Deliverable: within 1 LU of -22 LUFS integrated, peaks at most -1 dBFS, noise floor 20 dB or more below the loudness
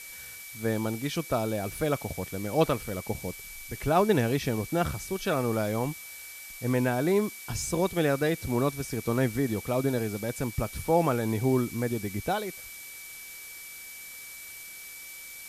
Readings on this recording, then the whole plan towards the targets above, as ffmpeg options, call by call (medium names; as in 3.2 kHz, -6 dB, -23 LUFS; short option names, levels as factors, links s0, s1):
steady tone 2.3 kHz; tone level -45 dBFS; noise floor -44 dBFS; noise floor target -49 dBFS; loudness -29.0 LUFS; peak level -9.5 dBFS; loudness target -22.0 LUFS
-> -af "bandreject=f=2300:w=30"
-af "afftdn=nr=6:nf=-44"
-af "volume=2.24"